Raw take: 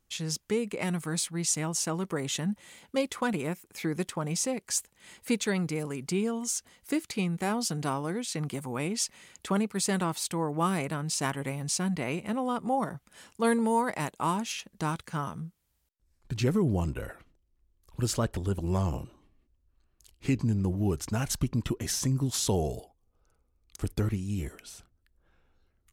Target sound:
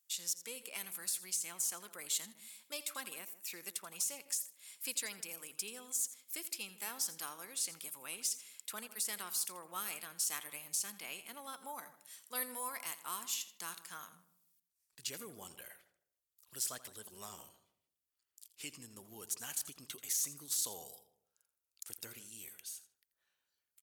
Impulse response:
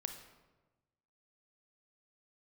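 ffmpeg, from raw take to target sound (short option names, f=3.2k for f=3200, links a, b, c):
-filter_complex "[0:a]deesser=0.6,asplit=2[a][b];[b]adelay=169,lowpass=f=860:p=1,volume=-13.5dB,asplit=2[c][d];[d]adelay=169,lowpass=f=860:p=1,volume=0.28,asplit=2[e][f];[f]adelay=169,lowpass=f=860:p=1,volume=0.28[g];[c][e][g]amix=inputs=3:normalize=0[h];[a][h]amix=inputs=2:normalize=0,asetrate=48000,aresample=44100,aderivative,asplit=2[i][j];[j]aecho=0:1:84:0.168[k];[i][k]amix=inputs=2:normalize=0,volume=1dB"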